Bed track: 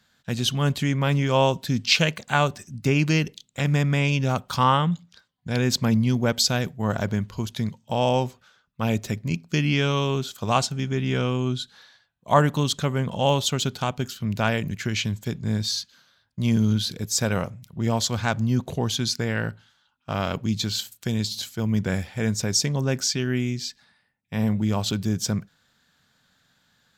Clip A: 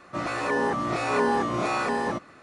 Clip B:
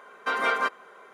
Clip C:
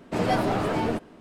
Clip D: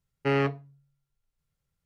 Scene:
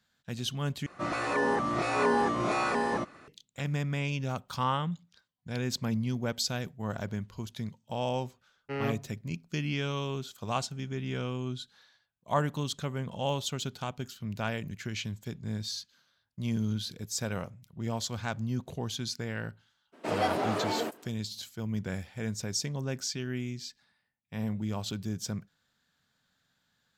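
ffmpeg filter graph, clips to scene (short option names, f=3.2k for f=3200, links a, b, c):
-filter_complex "[0:a]volume=-10dB[a];[4:a]dynaudnorm=f=170:g=5:m=11.5dB[b];[3:a]highpass=330[c];[a]asplit=2[d][e];[d]atrim=end=0.864[f];[1:a]atrim=end=2.42,asetpts=PTS-STARTPTS,volume=-2.5dB[g];[e]atrim=start=3.276[h];[b]atrim=end=1.85,asetpts=PTS-STARTPTS,volume=-14dB,afade=t=in:d=0.004:c=hsin,afade=t=out:st=1.846:d=0.004:c=hsin,adelay=8440[i];[c]atrim=end=1.2,asetpts=PTS-STARTPTS,volume=-3.5dB,afade=t=in:d=0.02,afade=t=out:st=1.18:d=0.02,adelay=19920[j];[f][g]acrossfade=d=0.004:c1=hsin:c2=hsin[k];[k][h]acrossfade=d=0.004:c1=hsin:c2=hsin[l];[l][i][j]amix=inputs=3:normalize=0"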